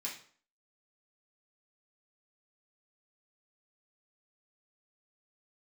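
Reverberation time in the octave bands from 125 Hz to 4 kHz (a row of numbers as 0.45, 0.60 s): 0.45, 0.50, 0.50, 0.50, 0.45, 0.40 s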